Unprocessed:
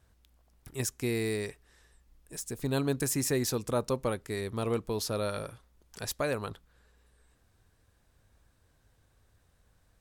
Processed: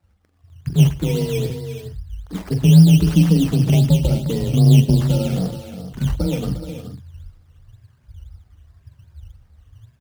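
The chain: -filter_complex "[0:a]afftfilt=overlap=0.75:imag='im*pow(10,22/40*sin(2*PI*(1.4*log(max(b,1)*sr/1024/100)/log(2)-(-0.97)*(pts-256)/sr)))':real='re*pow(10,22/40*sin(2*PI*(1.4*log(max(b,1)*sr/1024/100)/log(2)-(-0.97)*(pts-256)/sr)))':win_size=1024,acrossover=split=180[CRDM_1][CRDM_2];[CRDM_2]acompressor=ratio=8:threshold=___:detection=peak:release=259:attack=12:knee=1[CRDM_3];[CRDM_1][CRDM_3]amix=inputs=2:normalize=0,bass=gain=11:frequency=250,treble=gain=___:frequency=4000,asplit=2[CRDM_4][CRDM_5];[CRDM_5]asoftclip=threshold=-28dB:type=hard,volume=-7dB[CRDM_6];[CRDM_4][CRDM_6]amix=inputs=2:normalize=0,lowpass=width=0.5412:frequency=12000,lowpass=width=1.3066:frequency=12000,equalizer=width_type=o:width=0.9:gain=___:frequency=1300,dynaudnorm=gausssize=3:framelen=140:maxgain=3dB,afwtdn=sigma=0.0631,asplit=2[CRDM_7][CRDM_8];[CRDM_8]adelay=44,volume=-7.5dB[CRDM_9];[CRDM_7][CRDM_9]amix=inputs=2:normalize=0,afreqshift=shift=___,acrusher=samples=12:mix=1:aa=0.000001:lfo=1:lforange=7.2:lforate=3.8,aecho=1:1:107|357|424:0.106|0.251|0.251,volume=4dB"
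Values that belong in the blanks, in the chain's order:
-35dB, 8, 4, 25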